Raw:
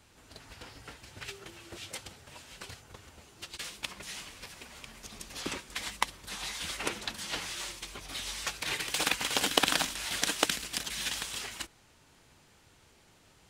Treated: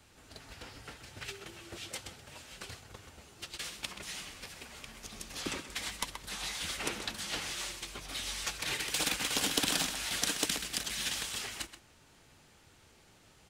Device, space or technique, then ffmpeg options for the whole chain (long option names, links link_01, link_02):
one-band saturation: -filter_complex "[0:a]bandreject=frequency=990:width=20,asplit=2[link_01][link_02];[link_02]adelay=128.3,volume=-12dB,highshelf=frequency=4000:gain=-2.89[link_03];[link_01][link_03]amix=inputs=2:normalize=0,acrossover=split=350|3700[link_04][link_05][link_06];[link_05]asoftclip=type=tanh:threshold=-31.5dB[link_07];[link_04][link_07][link_06]amix=inputs=3:normalize=0"